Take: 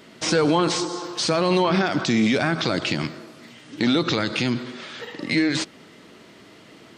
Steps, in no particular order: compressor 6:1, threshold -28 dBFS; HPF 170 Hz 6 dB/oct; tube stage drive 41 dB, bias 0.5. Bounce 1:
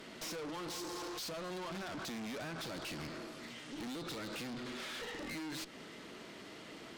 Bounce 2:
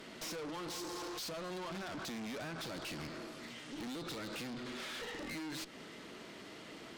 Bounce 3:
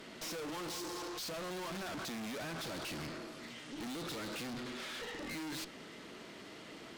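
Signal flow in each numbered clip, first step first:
HPF > compressor > tube stage; compressor > HPF > tube stage; HPF > tube stage > compressor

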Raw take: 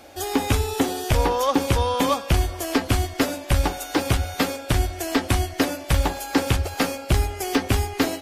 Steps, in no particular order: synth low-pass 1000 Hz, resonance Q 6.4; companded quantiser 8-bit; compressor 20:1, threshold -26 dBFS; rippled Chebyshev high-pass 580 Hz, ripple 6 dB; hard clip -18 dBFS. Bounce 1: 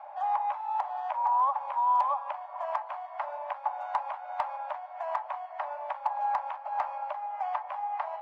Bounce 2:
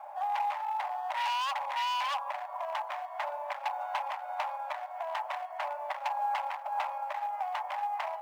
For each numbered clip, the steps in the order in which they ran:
compressor > rippled Chebyshev high-pass > companded quantiser > synth low-pass > hard clip; synth low-pass > hard clip > compressor > rippled Chebyshev high-pass > companded quantiser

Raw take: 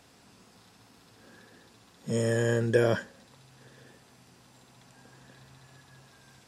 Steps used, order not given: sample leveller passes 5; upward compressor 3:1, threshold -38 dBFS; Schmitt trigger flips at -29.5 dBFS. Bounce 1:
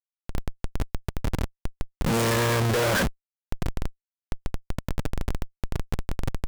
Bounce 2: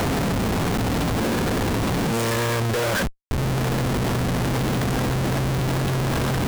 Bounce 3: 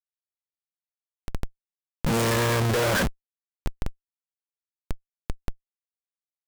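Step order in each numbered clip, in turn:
sample leveller > upward compressor > Schmitt trigger; upward compressor > sample leveller > Schmitt trigger; sample leveller > Schmitt trigger > upward compressor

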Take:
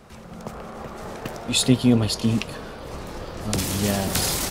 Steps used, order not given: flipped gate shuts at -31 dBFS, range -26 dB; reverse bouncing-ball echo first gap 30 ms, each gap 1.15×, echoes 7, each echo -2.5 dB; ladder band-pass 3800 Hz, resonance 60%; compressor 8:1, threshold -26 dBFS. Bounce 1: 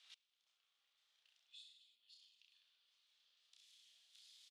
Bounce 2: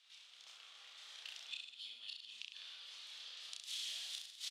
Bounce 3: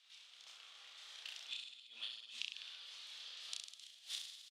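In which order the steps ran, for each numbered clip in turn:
compressor > reverse bouncing-ball echo > flipped gate > ladder band-pass; compressor > ladder band-pass > flipped gate > reverse bouncing-ball echo; ladder band-pass > compressor > flipped gate > reverse bouncing-ball echo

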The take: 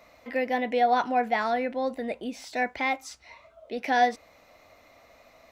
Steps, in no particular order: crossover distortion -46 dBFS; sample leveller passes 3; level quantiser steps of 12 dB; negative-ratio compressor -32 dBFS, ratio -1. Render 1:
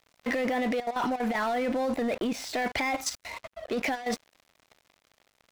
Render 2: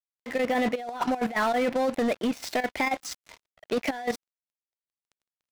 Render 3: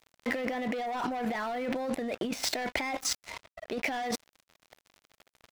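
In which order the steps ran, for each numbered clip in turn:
negative-ratio compressor > level quantiser > sample leveller > crossover distortion; crossover distortion > negative-ratio compressor > sample leveller > level quantiser; sample leveller > crossover distortion > level quantiser > negative-ratio compressor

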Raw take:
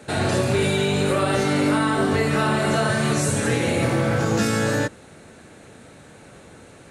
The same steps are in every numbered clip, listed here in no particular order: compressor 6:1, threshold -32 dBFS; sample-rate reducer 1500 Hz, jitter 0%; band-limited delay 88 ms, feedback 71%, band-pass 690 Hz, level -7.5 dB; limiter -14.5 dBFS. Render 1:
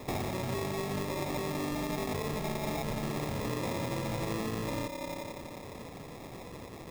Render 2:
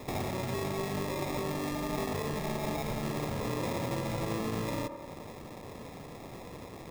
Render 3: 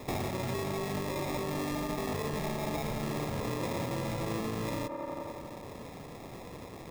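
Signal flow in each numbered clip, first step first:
limiter > band-limited delay > sample-rate reducer > compressor; limiter > compressor > sample-rate reducer > band-limited delay; sample-rate reducer > band-limited delay > limiter > compressor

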